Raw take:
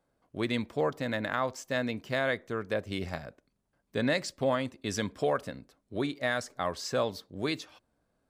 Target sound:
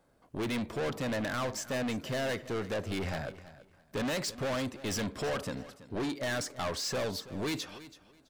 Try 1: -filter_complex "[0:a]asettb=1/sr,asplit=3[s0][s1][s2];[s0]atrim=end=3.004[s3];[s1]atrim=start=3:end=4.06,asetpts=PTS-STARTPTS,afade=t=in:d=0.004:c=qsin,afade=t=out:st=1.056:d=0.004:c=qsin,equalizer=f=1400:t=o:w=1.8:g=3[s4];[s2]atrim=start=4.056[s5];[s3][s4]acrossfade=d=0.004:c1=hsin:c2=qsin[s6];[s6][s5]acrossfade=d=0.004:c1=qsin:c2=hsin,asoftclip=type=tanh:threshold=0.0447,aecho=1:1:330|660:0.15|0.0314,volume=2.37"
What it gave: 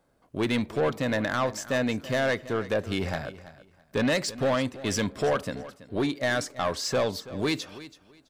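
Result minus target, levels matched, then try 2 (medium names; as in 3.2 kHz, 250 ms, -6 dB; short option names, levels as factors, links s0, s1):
saturation: distortion -7 dB
-filter_complex "[0:a]asettb=1/sr,asplit=3[s0][s1][s2];[s0]atrim=end=3.004[s3];[s1]atrim=start=3:end=4.06,asetpts=PTS-STARTPTS,afade=t=in:d=0.004:c=qsin,afade=t=out:st=1.056:d=0.004:c=qsin,equalizer=f=1400:t=o:w=1.8:g=3[s4];[s2]atrim=start=4.056[s5];[s3][s4]acrossfade=d=0.004:c1=hsin:c2=qsin[s6];[s6][s5]acrossfade=d=0.004:c1=qsin:c2=hsin,asoftclip=type=tanh:threshold=0.0126,aecho=1:1:330|660:0.15|0.0314,volume=2.37"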